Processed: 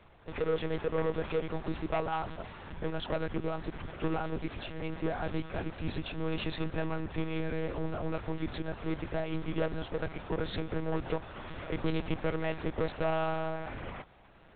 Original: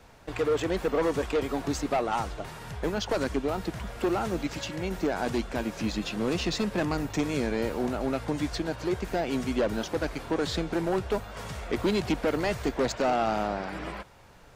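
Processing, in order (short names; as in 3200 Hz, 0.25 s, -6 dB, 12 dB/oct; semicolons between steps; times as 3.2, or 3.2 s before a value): monotone LPC vocoder at 8 kHz 160 Hz; gain -4.5 dB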